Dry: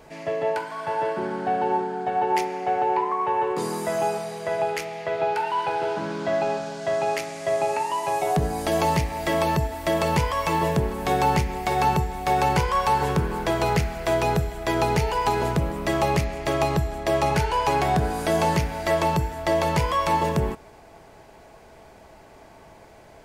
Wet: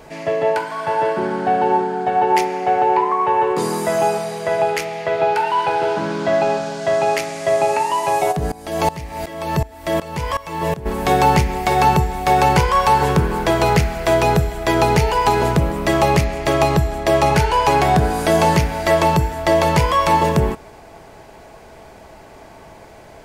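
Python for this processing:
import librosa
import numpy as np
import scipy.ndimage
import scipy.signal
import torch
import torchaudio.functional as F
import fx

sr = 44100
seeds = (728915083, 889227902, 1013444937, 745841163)

y = fx.tremolo_decay(x, sr, direction='swelling', hz=2.7, depth_db=20, at=(8.31, 10.85), fade=0.02)
y = F.gain(torch.from_numpy(y), 7.0).numpy()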